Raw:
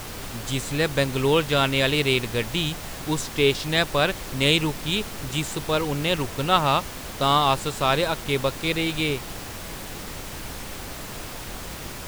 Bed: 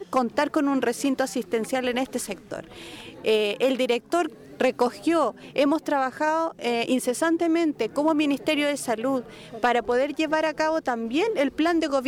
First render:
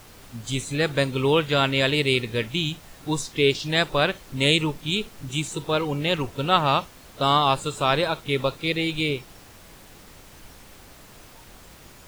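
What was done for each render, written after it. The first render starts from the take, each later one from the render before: noise print and reduce 12 dB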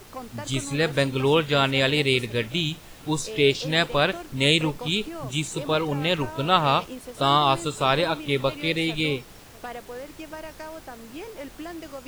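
add bed -15 dB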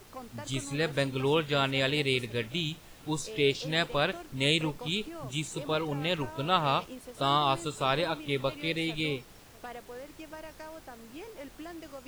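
trim -6.5 dB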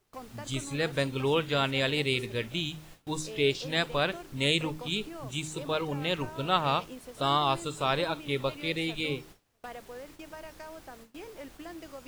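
de-hum 77.49 Hz, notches 5; gate with hold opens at -39 dBFS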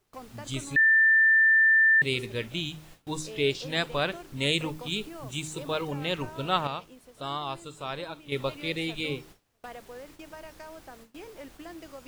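0.76–2.02 s: bleep 1.78 kHz -16.5 dBFS; 4.53–5.91 s: treble shelf 9.6 kHz +4.5 dB; 6.67–8.32 s: gain -7.5 dB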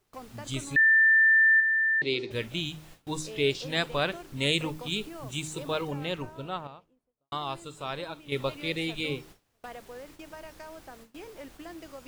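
1.60–2.31 s: cabinet simulation 190–5200 Hz, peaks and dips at 200 Hz -8 dB, 330 Hz +8 dB, 1.2 kHz -8 dB, 1.7 kHz -5 dB, 2.9 kHz -4 dB, 4.4 kHz +5 dB; 5.64–7.32 s: studio fade out

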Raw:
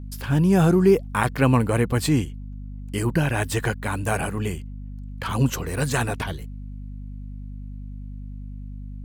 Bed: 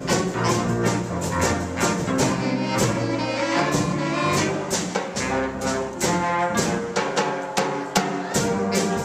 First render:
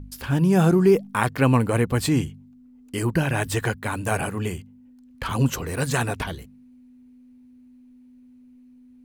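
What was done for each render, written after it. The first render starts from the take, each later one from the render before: de-hum 50 Hz, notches 4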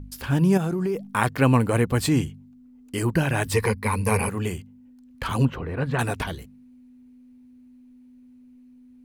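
0.57–1.10 s: compression, threshold -22 dBFS; 3.53–4.29 s: rippled EQ curve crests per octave 0.88, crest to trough 14 dB; 5.45–5.99 s: distance through air 460 m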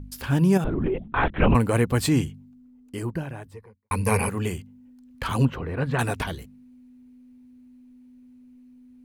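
0.64–1.55 s: LPC vocoder at 8 kHz whisper; 2.25–3.91 s: studio fade out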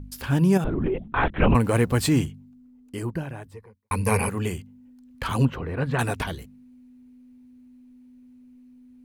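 1.64–2.26 s: companding laws mixed up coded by mu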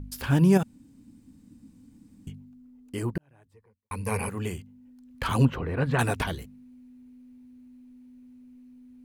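0.63–2.27 s: room tone; 3.18–5.29 s: fade in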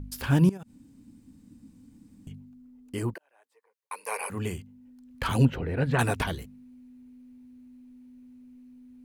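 0.49–2.31 s: compression, threshold -37 dBFS; 3.14–4.30 s: high-pass 520 Hz 24 dB/octave; 5.31–5.93 s: peaking EQ 1.1 kHz -14.5 dB 0.27 oct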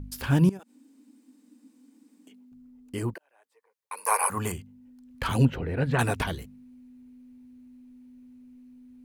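0.59–2.52 s: steep high-pass 250 Hz 48 dB/octave; 3.97–4.52 s: FFT filter 410 Hz 0 dB, 1.1 kHz +13 dB, 1.8 kHz +4 dB, 2.7 kHz 0 dB, 11 kHz +12 dB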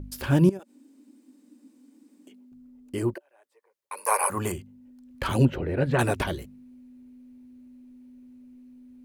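small resonant body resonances 360/570 Hz, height 9 dB, ringing for 45 ms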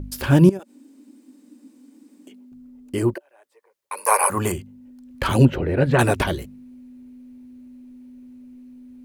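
trim +6 dB

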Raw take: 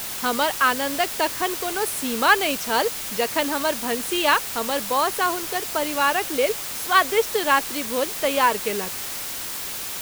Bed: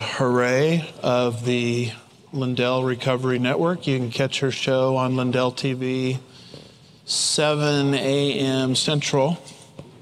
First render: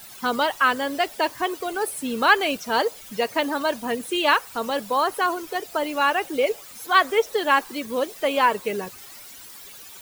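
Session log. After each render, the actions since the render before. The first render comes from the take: noise reduction 15 dB, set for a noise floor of -31 dBFS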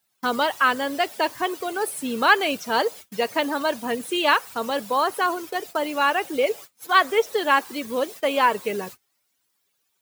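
gate -37 dBFS, range -30 dB; high-pass 74 Hz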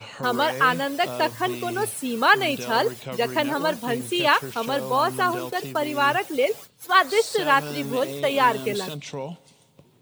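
add bed -13 dB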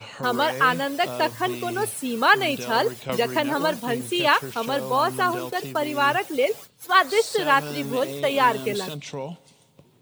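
3.09–3.80 s: three bands compressed up and down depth 70%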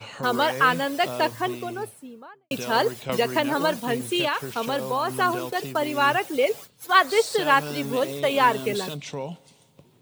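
1.13–2.51 s: studio fade out; 4.24–5.17 s: compression, threshold -20 dBFS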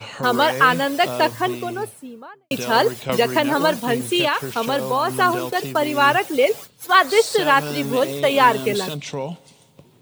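trim +5 dB; peak limiter -3 dBFS, peak gain reduction 3 dB

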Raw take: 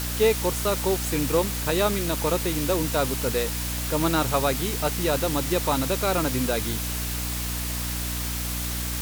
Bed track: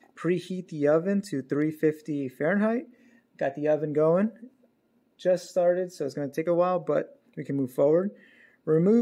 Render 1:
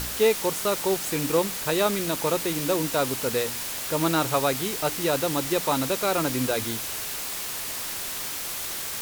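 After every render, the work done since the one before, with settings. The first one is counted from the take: de-hum 60 Hz, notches 5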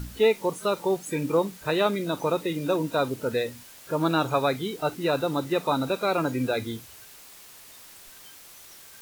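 noise print and reduce 16 dB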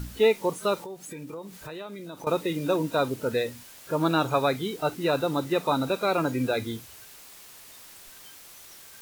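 0.77–2.27 s: compression 4:1, threshold -38 dBFS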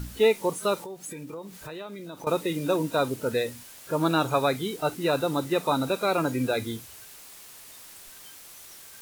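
dynamic bell 10 kHz, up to +5 dB, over -52 dBFS, Q 0.98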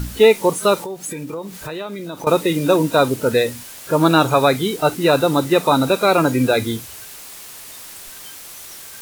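trim +10 dB; peak limiter -3 dBFS, peak gain reduction 2 dB

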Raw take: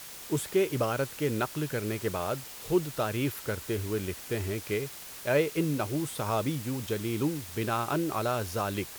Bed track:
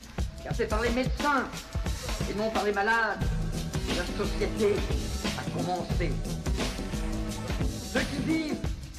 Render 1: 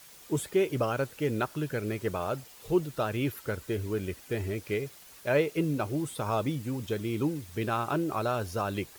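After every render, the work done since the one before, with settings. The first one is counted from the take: noise reduction 9 dB, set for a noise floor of -44 dBFS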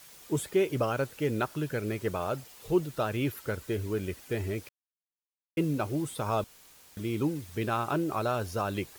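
4.69–5.57 s: mute; 6.44–6.97 s: room tone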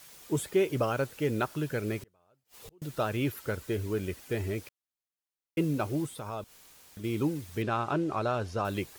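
2.02–2.82 s: inverted gate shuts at -35 dBFS, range -36 dB; 6.06–7.04 s: compression 1.5:1, threshold -48 dBFS; 7.62–8.65 s: distance through air 75 m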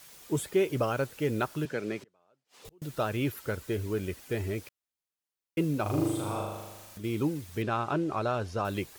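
1.65–2.65 s: three-band isolator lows -23 dB, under 150 Hz, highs -16 dB, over 7.8 kHz; 5.82–6.98 s: flutter echo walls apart 6.7 m, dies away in 1.2 s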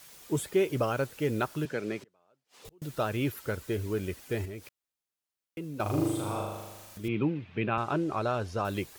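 4.45–5.80 s: compression 2:1, threshold -43 dBFS; 7.08–7.78 s: cabinet simulation 120–3200 Hz, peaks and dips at 120 Hz +4 dB, 190 Hz +6 dB, 2.5 kHz +8 dB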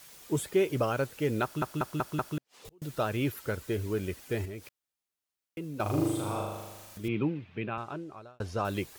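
1.43 s: stutter in place 0.19 s, 5 plays; 7.08–8.40 s: fade out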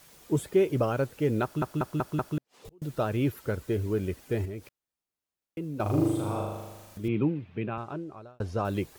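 tilt shelf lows +4 dB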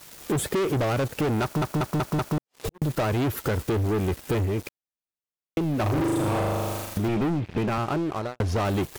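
waveshaping leveller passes 5; compression 5:1, threshold -24 dBFS, peak gain reduction 8 dB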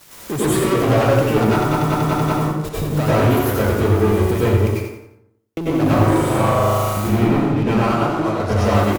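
on a send: feedback delay 86 ms, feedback 38%, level -7 dB; on the sum: plate-style reverb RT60 0.76 s, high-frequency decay 0.5×, pre-delay 85 ms, DRR -8 dB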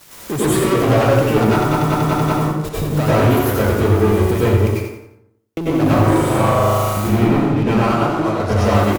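trim +1.5 dB; peak limiter -3 dBFS, peak gain reduction 2 dB

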